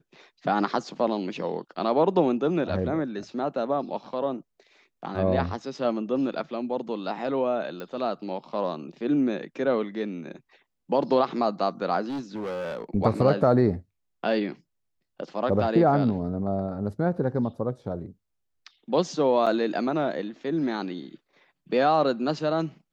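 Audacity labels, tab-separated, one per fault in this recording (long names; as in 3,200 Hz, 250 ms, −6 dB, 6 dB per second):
7.800000	7.800000	click −23 dBFS
12.080000	12.840000	clipping −28.5 dBFS
19.460000	19.470000	drop-out 6.8 ms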